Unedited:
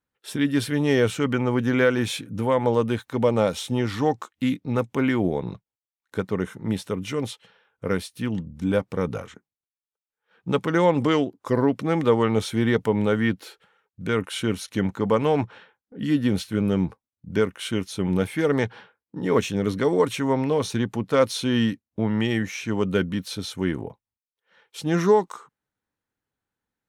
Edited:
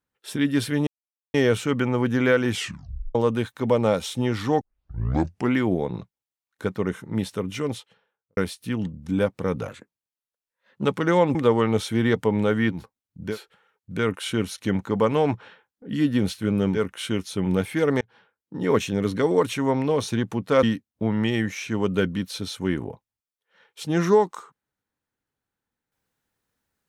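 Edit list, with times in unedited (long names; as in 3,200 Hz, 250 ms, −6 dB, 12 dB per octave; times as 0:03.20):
0:00.87: splice in silence 0.47 s
0:02.04: tape stop 0.64 s
0:04.14: tape start 0.93 s
0:07.15–0:07.90: fade out and dull
0:09.21–0:10.51: play speed 112%
0:11.02–0:11.97: remove
0:16.86–0:17.38: move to 0:13.40, crossfade 0.16 s
0:18.63–0:19.21: fade in
0:21.25–0:21.60: remove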